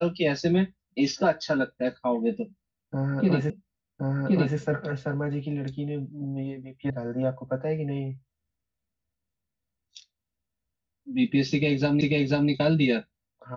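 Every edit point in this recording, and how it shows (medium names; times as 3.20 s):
3.50 s: repeat of the last 1.07 s
6.90 s: sound stops dead
12.01 s: repeat of the last 0.49 s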